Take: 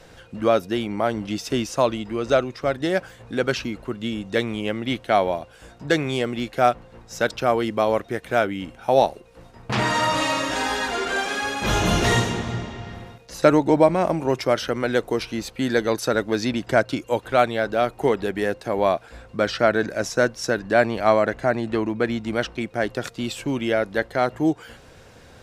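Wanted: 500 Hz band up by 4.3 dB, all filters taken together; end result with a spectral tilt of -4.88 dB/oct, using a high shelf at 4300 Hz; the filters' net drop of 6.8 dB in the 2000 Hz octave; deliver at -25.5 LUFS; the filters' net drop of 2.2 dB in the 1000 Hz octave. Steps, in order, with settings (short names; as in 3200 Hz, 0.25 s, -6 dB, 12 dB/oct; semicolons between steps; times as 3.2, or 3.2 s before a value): bell 500 Hz +7.5 dB; bell 1000 Hz -6 dB; bell 2000 Hz -9 dB; high shelf 4300 Hz +8 dB; gain -5 dB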